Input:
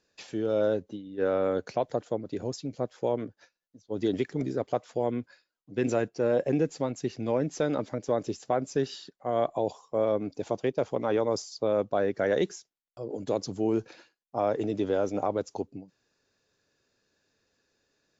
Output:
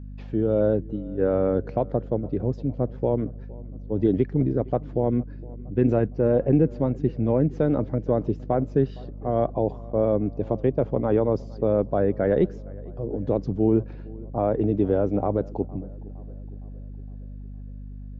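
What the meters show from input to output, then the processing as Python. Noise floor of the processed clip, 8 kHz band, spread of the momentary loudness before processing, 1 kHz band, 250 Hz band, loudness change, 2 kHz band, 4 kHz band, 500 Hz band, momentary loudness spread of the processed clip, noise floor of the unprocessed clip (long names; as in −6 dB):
−38 dBFS, can't be measured, 10 LU, +1.5 dB, +7.5 dB, +5.5 dB, −3.5 dB, below −10 dB, +4.0 dB, 18 LU, −84 dBFS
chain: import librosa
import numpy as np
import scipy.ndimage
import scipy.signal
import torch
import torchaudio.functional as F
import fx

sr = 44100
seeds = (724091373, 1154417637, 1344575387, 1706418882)

y = scipy.signal.sosfilt(scipy.signal.butter(2, 3200.0, 'lowpass', fs=sr, output='sos'), x)
y = fx.tilt_eq(y, sr, slope=-4.0)
y = fx.vibrato(y, sr, rate_hz=3.4, depth_cents=5.5)
y = fx.add_hum(y, sr, base_hz=50, snr_db=13)
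y = fx.echo_filtered(y, sr, ms=462, feedback_pct=57, hz=1700.0, wet_db=-22.0)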